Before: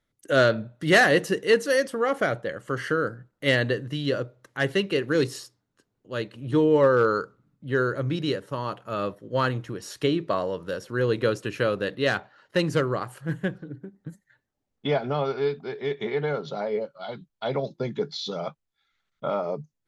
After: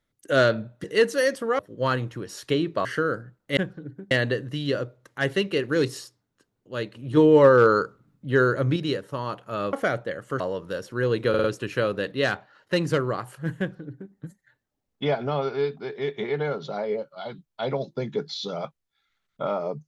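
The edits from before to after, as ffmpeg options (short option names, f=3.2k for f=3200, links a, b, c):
-filter_complex "[0:a]asplit=13[a][b][c][d][e][f][g][h][i][j][k][l][m];[a]atrim=end=0.842[n];[b]atrim=start=1.358:end=2.112[o];[c]atrim=start=9.118:end=10.382[p];[d]atrim=start=2.778:end=3.502[q];[e]atrim=start=13.418:end=13.962[r];[f]atrim=start=3.498:end=6.562[s];[g]atrim=start=6.558:end=8.152,asetpts=PTS-STARTPTS,volume=4dB[t];[h]atrim=start=8.148:end=9.122[u];[i]atrim=start=2.108:end=2.782[v];[j]atrim=start=10.378:end=11.322[w];[k]atrim=start=11.268:end=11.322[x];[l]atrim=start=11.268:end=11.322[y];[m]atrim=start=11.268[z];[n][o]acrossfade=d=0.004:c1=hsin:c2=hsin[aa];[aa][p]acrossfade=d=0.004:c1=hsin:c2=hsin[ab];[ab][q]acrossfade=d=0.004:c1=hsin:c2=hsin[ac];[ac][r]acrossfade=d=0.004:c1=hsin:c2=hsin[ad];[ad][s]acrossfade=d=0.004:c1=hsin:c2=hsin[ae];[ae][t]acrossfade=d=0.004:c1=hsin:c2=hsin[af];[af][u]acrossfade=d=0.004:c1=hsin:c2=hsin[ag];[ag][v]acrossfade=d=0.004:c1=hsin:c2=hsin[ah];[ah][w]acrossfade=d=0.004:c1=hsin:c2=hsin[ai];[ai][x]acrossfade=d=0.004:c1=hsin:c2=hsin[aj];[aj][y]acrossfade=d=0.004:c1=hsin:c2=hsin[ak];[ak][z]acrossfade=d=0.004:c1=hsin:c2=hsin"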